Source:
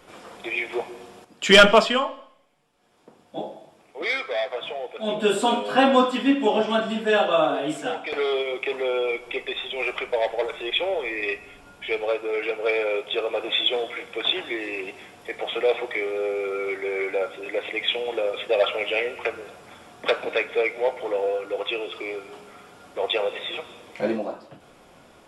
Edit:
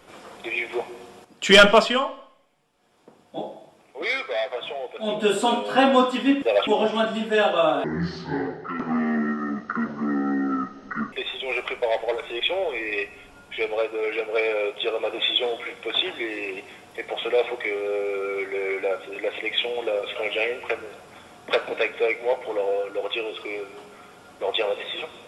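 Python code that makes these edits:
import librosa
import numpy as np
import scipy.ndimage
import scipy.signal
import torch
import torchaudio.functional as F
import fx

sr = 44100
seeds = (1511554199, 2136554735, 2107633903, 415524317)

y = fx.edit(x, sr, fx.speed_span(start_s=7.59, length_s=1.84, speed=0.56),
    fx.move(start_s=18.46, length_s=0.25, to_s=6.42), tone=tone)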